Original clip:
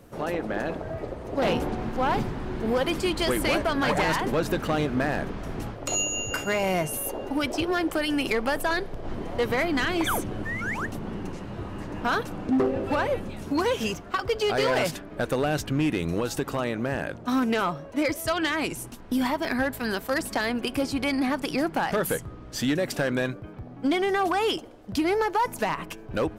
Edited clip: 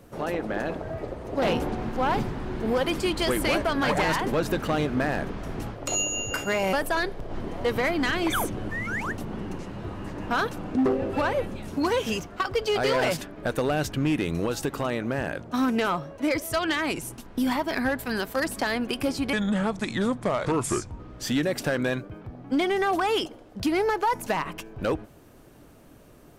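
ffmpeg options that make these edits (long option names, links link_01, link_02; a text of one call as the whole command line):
ffmpeg -i in.wav -filter_complex "[0:a]asplit=4[link_01][link_02][link_03][link_04];[link_01]atrim=end=6.732[link_05];[link_02]atrim=start=8.468:end=21.074[link_06];[link_03]atrim=start=21.07:end=22.32,asetpts=PTS-STARTPTS,asetrate=33075,aresample=44100[link_07];[link_04]atrim=start=22.316[link_08];[link_05][link_06]acrossfade=duration=0.004:curve1=hsin:curve2=hsin[link_09];[link_09][link_07]acrossfade=duration=0.004:curve1=hsin:curve2=hsin[link_10];[link_10][link_08]acrossfade=duration=0.004:curve1=hsin:curve2=hsin" out.wav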